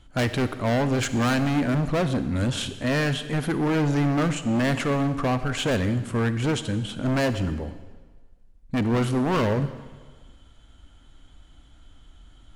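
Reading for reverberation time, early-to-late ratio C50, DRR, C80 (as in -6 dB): 1.4 s, 12.0 dB, 11.5 dB, 13.5 dB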